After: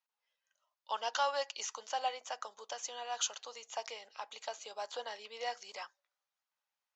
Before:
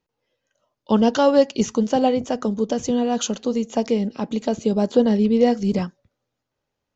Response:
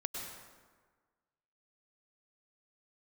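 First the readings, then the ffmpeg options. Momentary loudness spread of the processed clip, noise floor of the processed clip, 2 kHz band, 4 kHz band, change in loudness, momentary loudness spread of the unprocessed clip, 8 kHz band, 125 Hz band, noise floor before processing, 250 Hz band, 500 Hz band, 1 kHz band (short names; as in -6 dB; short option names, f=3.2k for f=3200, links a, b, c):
12 LU, under -85 dBFS, -7.5 dB, -7.5 dB, -19.0 dB, 8 LU, n/a, under -40 dB, -81 dBFS, under -40 dB, -23.0 dB, -11.0 dB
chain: -af "highpass=f=830:w=0.5412,highpass=f=830:w=1.3066,volume=-7.5dB"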